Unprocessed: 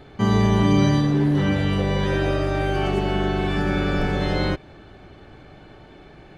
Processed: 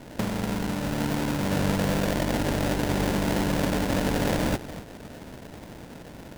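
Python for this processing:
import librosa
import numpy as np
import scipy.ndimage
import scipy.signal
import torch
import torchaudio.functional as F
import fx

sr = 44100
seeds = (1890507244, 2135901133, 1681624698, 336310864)

y = fx.spec_flatten(x, sr, power=0.41)
y = fx.over_compress(y, sr, threshold_db=-25.0, ratio=-1.0)
y = scipy.signal.sosfilt(scipy.signal.butter(4, 2500.0, 'lowpass', fs=sr, output='sos'), y)
y = fx.peak_eq(y, sr, hz=230.0, db=5.5, octaves=0.77)
y = fx.notch_comb(y, sr, f0_hz=380.0)
y = y + 10.0 ** (-13.5 / 20.0) * np.pad(y, (int(242 * sr / 1000.0), 0))[:len(y)]
y = fx.sample_hold(y, sr, seeds[0], rate_hz=1200.0, jitter_pct=20)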